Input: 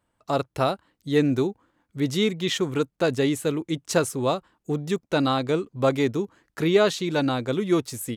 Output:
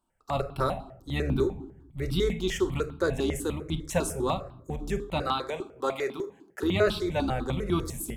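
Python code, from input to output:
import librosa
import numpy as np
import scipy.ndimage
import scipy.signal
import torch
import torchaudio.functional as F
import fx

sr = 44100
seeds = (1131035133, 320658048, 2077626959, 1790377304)

y = fx.octave_divider(x, sr, octaves=2, level_db=-5.0)
y = fx.highpass(y, sr, hz=390.0, slope=12, at=(5.21, 6.63))
y = fx.room_shoebox(y, sr, seeds[0], volume_m3=1000.0, walls='furnished', distance_m=1.1)
y = fx.phaser_held(y, sr, hz=10.0, low_hz=510.0, high_hz=1900.0)
y = y * 10.0 ** (-2.0 / 20.0)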